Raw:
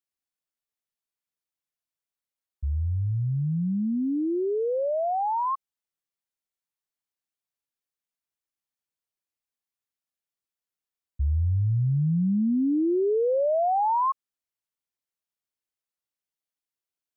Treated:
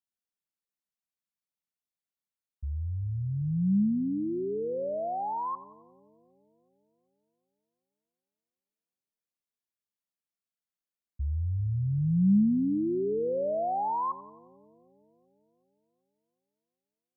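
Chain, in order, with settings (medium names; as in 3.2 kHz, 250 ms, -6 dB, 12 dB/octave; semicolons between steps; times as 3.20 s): peaking EQ 200 Hz +9.5 dB 0.51 oct; two-band feedback delay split 480 Hz, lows 379 ms, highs 89 ms, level -16 dB; trim -6.5 dB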